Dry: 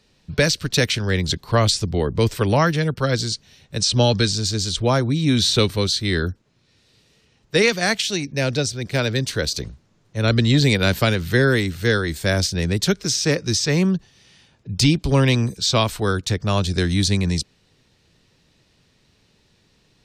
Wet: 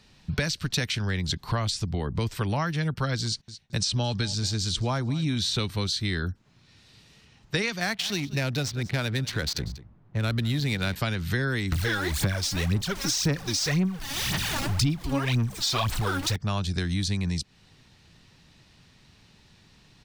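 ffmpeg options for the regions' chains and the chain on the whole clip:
-filter_complex "[0:a]asettb=1/sr,asplit=3[a][b][c];[a]atrim=end=3.264[d];[b]atrim=start=3.26:end=5.38,asetpts=PTS-STARTPTS,afade=t=in:d=0.004:c=qsin,afade=t=out:st=2.116:d=0.004:c=qsin,agate=range=-20dB:threshold=-44dB:ratio=16:release=100:detection=peak,aecho=1:1:219|438:0.0944|0.0236,atrim=end_sample=93492[e];[c]atrim=start=5.376[f];[d][e]acrossfade=d=0.004:c1=hsin:c2=qsin[g];[g][f]acrossfade=d=0.004:c1=qsin:c2=hsin,asettb=1/sr,asplit=3[h][i][j];[h]atrim=end=7.804[k];[i]atrim=start=7.8:end=10.96,asetpts=PTS-STARTPTS,afade=t=in:d=0.004:c=qsin,afade=t=out:st=3.156:d=0.004:c=qsin,adynamicsmooth=sensitivity=6:basefreq=1.3k,aecho=1:1:190:0.0891,atrim=end_sample=139356[l];[j]atrim=start=10.956[m];[k][l]acrossfade=d=0.004:c1=hsin:c2=qsin[n];[n][m]acrossfade=d=0.004:c1=qsin:c2=hsin,asettb=1/sr,asplit=3[o][p][q];[o]atrim=end=11.724[r];[p]atrim=start=11.72:end=16.36,asetpts=PTS-STARTPTS,afade=t=in:d=0.004:c=qsin,afade=t=out:st=4.636:d=0.004:c=qsin,aeval=exprs='val(0)+0.5*0.0668*sgn(val(0))':c=same,aphaser=in_gain=1:out_gain=1:delay=3.7:decay=0.72:speed=1.9:type=sinusoidal[s];[q]atrim=start=16.356[t];[r][s]acrossfade=d=0.004:c1=hsin:c2=qsin[u];[u][t]acrossfade=d=0.004:c1=qsin:c2=hsin,firequalizer=gain_entry='entry(170,0);entry(480,-8);entry(770,0);entry(7300,-3)':delay=0.05:min_phase=1,acompressor=threshold=-30dB:ratio=5,volume=4.5dB"

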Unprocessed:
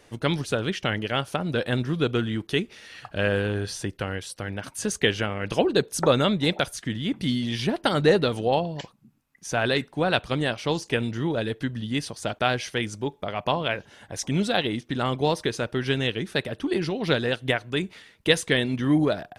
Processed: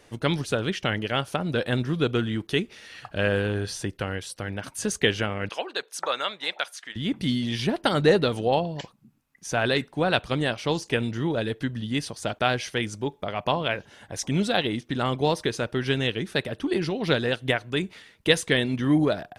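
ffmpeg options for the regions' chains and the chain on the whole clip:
-filter_complex "[0:a]asettb=1/sr,asplit=3[a][b][c];[a]atrim=end=5.494[d];[b]atrim=start=5.49:end=6.96,asetpts=PTS-STARTPTS,afade=t=in:d=0.004:c=qsin,afade=t=out:st=1.466:d=0.004:c=qsin,highpass=940,highshelf=f=5.5k:g=-8.5[e];[c]atrim=start=6.956[f];[d][e]acrossfade=d=0.004:c1=hsin:c2=qsin[g];[g][f]acrossfade=d=0.004:c1=qsin:c2=hsin"

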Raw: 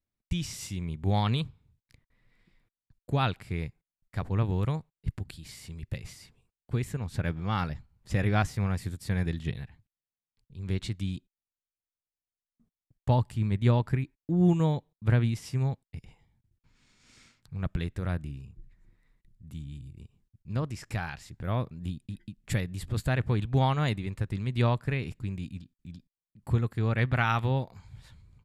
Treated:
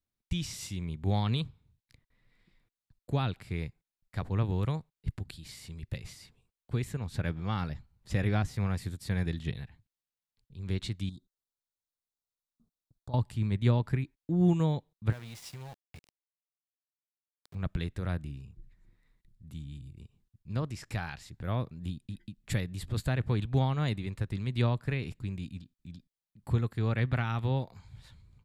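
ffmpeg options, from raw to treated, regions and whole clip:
-filter_complex "[0:a]asettb=1/sr,asplit=3[a][b][c];[a]atrim=end=11.094[d];[b]atrim=start=11.09:end=13.14,asetpts=PTS-STARTPTS,afade=t=in:d=0.004:c=qsin,afade=t=out:st=2.046:d=0.004:c=qsin,asuperstop=centerf=2300:order=12:qfactor=1.2,acompressor=threshold=-42dB:ratio=3:attack=3.2:release=140:knee=1:detection=peak[e];[c]atrim=start=13.136[f];[d][e]acrossfade=d=0.004:c1=hsin:c2=qsin[g];[g][f]acrossfade=d=0.004:c1=qsin:c2=hsin,asettb=1/sr,asplit=3[h][i][j];[h]atrim=end=15.124[k];[i]atrim=start=15.12:end=17.55,asetpts=PTS-STARTPTS,afade=t=in:d=0.004:c=qsin,afade=t=out:st=2.426:d=0.004:c=qsin,lowshelf=f=490:t=q:w=1.5:g=-7.5,acompressor=threshold=-37dB:ratio=10:attack=3.2:release=140:knee=1:detection=peak,aeval=exprs='val(0)*gte(abs(val(0)),0.00501)':c=same[l];[j]atrim=start=17.546[m];[k][l]acrossfade=d=0.004:c1=hsin:c2=qsin[n];[n][m]acrossfade=d=0.004:c1=qsin:c2=hsin,acrossover=split=440[o][p];[p]acompressor=threshold=-31dB:ratio=6[q];[o][q]amix=inputs=2:normalize=0,equalizer=f=3.9k:t=o:w=0.48:g=3.5,volume=-2dB"

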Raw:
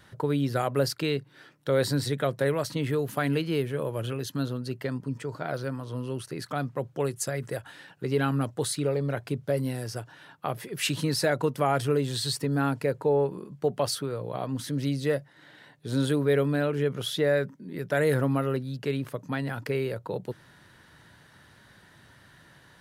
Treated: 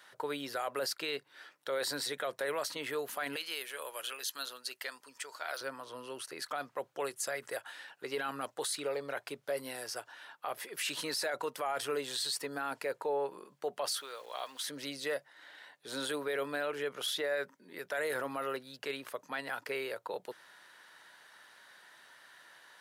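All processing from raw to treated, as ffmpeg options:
-filter_complex "[0:a]asettb=1/sr,asplit=3[a][b][c];[a]atrim=end=3.364[d];[b]atrim=start=3.36:end=5.61,asetpts=PTS-STARTPTS,afade=t=in:d=0.004:c=qsin,afade=t=out:st=2.246:d=0.004:c=qsin,highpass=f=1.2k:p=1,equalizer=f=11k:t=o:w=2.8:g=7[e];[c]atrim=start=5.606[f];[d][e]acrossfade=d=0.004:c1=hsin:c2=qsin[g];[g][f]acrossfade=d=0.004:c1=qsin:c2=hsin,asettb=1/sr,asplit=3[h][i][j];[h]atrim=end=13.994[k];[i]atrim=start=13.99:end=14.63,asetpts=PTS-STARTPTS,afade=t=in:d=0.004:c=qsin,afade=t=out:st=0.636:d=0.004:c=qsin,highpass=f=1k:p=1,equalizer=f=3.5k:t=o:w=0.6:g=8,aeval=exprs='val(0)*gte(abs(val(0)),0.00211)':c=same[l];[j]atrim=start=14.626[m];[k][l]acrossfade=d=0.004:c1=hsin:c2=qsin[n];[n][m]acrossfade=d=0.004:c1=qsin:c2=hsin,highpass=670,alimiter=level_in=2dB:limit=-24dB:level=0:latency=1:release=11,volume=-2dB"

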